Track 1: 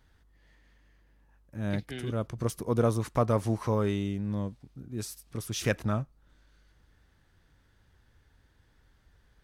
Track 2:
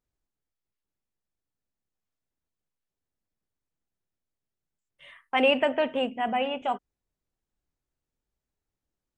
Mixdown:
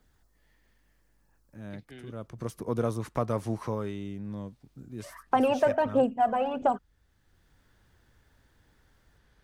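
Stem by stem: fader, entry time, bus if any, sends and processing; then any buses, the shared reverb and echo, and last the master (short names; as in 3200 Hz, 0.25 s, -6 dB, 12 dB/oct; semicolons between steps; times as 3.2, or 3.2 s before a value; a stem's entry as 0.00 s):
2.05 s -16.5 dB -> 2.67 s -3.5 dB -> 3.6 s -3.5 dB -> 3.92 s -10 dB, 0.00 s, no send, dry
+1.0 dB, 0.00 s, no send, band shelf 2600 Hz -14.5 dB 1.1 oct; phaser 1.5 Hz, delay 2 ms, feedback 57%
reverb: off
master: three-band squash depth 40%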